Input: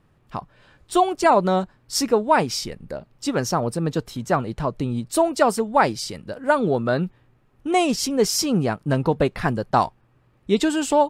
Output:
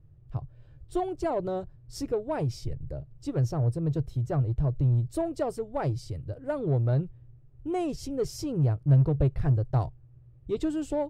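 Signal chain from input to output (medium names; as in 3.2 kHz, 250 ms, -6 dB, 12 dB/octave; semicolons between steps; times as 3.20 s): FFT filter 140 Hz 0 dB, 200 Hz -28 dB, 300 Hz -14 dB, 650 Hz -18 dB, 920 Hz -27 dB; in parallel at -5 dB: saturation -35.5 dBFS, distortion -6 dB; on the sum: trim +4.5 dB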